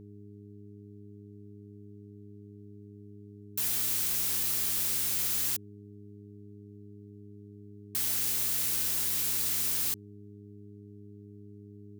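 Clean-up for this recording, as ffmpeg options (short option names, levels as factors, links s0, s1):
-af "bandreject=f=102.4:t=h:w=4,bandreject=f=204.8:t=h:w=4,bandreject=f=307.2:t=h:w=4,bandreject=f=409.6:t=h:w=4"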